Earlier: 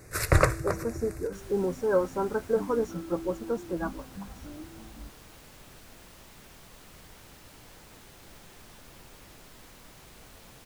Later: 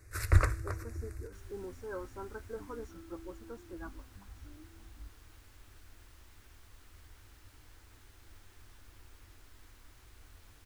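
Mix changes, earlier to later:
speech −3.5 dB
master: add drawn EQ curve 100 Hz 0 dB, 150 Hz −22 dB, 310 Hz −8 dB, 550 Hz −16 dB, 1,500 Hz −7 dB, 2,600 Hz −10 dB

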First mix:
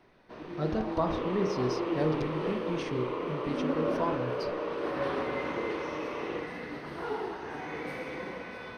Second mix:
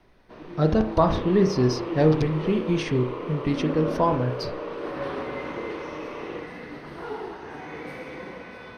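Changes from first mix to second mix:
speech +9.5 dB
master: add low-shelf EQ 210 Hz +3 dB

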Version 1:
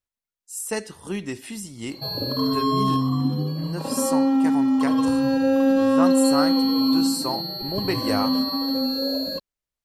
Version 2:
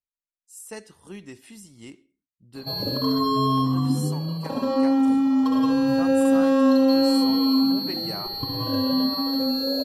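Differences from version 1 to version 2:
speech −10.5 dB
background: entry +0.65 s

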